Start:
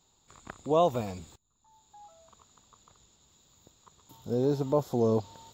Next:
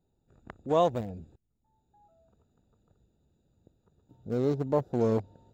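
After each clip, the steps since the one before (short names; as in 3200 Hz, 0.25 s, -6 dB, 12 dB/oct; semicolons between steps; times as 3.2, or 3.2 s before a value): Wiener smoothing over 41 samples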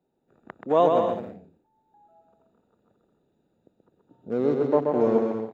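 three-band isolator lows -21 dB, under 180 Hz, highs -14 dB, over 3100 Hz; on a send: bouncing-ball echo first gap 0.13 s, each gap 0.65×, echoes 5; on the sum: gain +4.5 dB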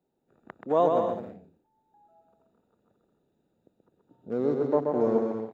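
dynamic EQ 2700 Hz, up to -7 dB, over -48 dBFS, Q 1.5; gain -3 dB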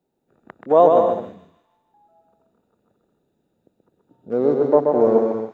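thin delay 0.154 s, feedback 47%, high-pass 2100 Hz, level -8 dB; dynamic EQ 610 Hz, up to +7 dB, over -37 dBFS, Q 0.71; gain +3.5 dB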